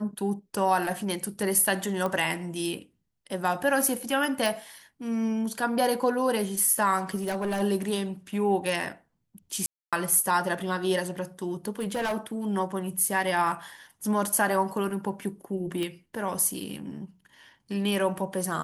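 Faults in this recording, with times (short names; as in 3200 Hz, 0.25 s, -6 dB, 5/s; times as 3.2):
2.06 pop -17 dBFS
4.46 pop
7.15–7.62 clipped -25 dBFS
9.66–9.93 gap 0.266 s
11.79–12.45 clipped -25 dBFS
15.83 pop -18 dBFS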